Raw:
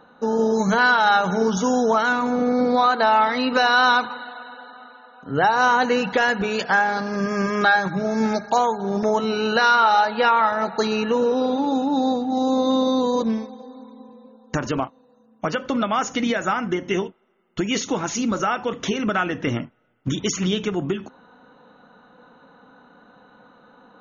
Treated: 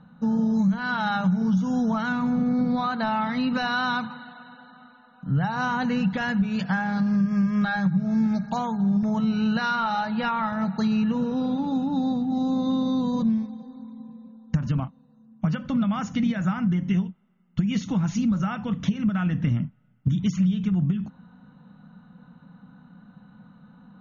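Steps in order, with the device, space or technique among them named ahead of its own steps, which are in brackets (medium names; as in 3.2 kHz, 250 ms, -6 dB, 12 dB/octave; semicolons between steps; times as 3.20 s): jukebox (low-pass 5.4 kHz 12 dB/octave; resonant low shelf 260 Hz +13.5 dB, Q 3; compression 6:1, threshold -12 dBFS, peak gain reduction 12 dB); trim -7.5 dB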